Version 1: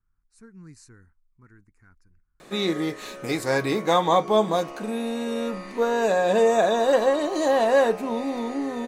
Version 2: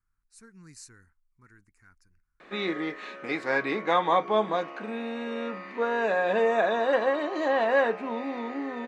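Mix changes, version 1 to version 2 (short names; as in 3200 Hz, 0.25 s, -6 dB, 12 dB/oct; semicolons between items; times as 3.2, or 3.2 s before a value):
background: add Chebyshev band-pass 220–2000 Hz, order 2; master: add tilt shelf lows -6 dB, about 1300 Hz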